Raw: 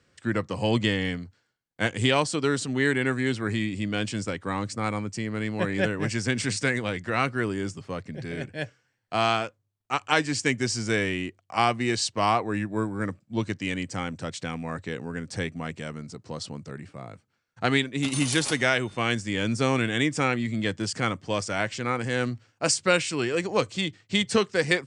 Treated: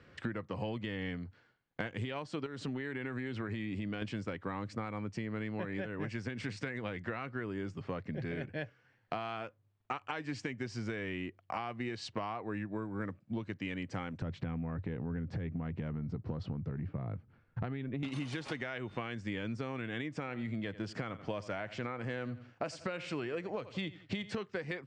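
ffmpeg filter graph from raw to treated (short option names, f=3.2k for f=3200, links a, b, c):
-filter_complex "[0:a]asettb=1/sr,asplit=3[a][b][c];[a]atrim=end=2.464[d];[b]atrim=start=2.46:end=4.02,asetpts=PTS-STARTPTS,afade=t=in:d=0.004:c=qsin,afade=t=out:st=1.556:d=0.004:c=qsin,highpass=48,acompressor=threshold=-28dB:ratio=10:attack=3.2:release=140:knee=1:detection=peak[e];[c]atrim=start=4.016[f];[d][e]acrossfade=d=0.004:c1=hsin:c2=qsin[g];[g][f]acrossfade=d=0.004:c1=qsin:c2=hsin,asettb=1/sr,asplit=3[h][i][j];[h]atrim=end=14.224[k];[i]atrim=start=14.22:end=18.03,asetpts=PTS-STARTPTS,afade=t=in:d=0.004:c=qsin,afade=t=out:st=3.806:d=0.004:c=qsin,aemphasis=mode=reproduction:type=riaa,acompressor=threshold=-27dB:ratio=6:attack=3.2:release=140:knee=1:detection=peak[l];[j]atrim=start=18.026[m];[k][l]acrossfade=d=0.004:c1=hsin:c2=qsin[n];[n][m]acrossfade=d=0.004:c1=qsin:c2=hsin,asettb=1/sr,asplit=3[o][p][q];[o]atrim=end=20.094[r];[p]atrim=start=20.09:end=24.33,asetpts=PTS-STARTPTS,afade=t=in:d=0.004:c=qsin,afade=t=out:st=4.236:d=0.004:c=qsin,equalizer=f=630:w=5.4:g=4.5,aecho=1:1:86|172:0.106|0.0297,atrim=end_sample=186984[s];[q]atrim=start=24.326[t];[r][s]acrossfade=d=0.004:c1=hsin:c2=qsin[u];[u][t]acrossfade=d=0.004:c1=qsin:c2=hsin,lowpass=2.8k,alimiter=limit=-17dB:level=0:latency=1:release=225,acompressor=threshold=-42dB:ratio=10,volume=7dB"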